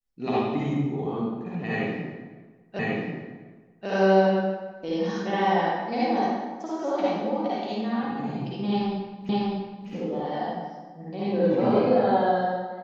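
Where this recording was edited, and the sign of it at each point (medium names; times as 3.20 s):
2.79 s: repeat of the last 1.09 s
9.29 s: repeat of the last 0.6 s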